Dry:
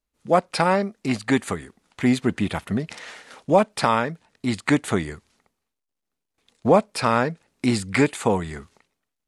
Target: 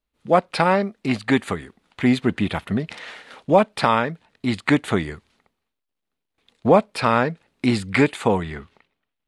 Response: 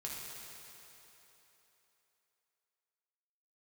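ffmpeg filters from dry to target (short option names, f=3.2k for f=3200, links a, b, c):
-af "asetnsamples=n=441:p=0,asendcmd='8.43 highshelf g -12.5',highshelf=f=4.7k:t=q:w=1.5:g=-6,volume=1.5dB"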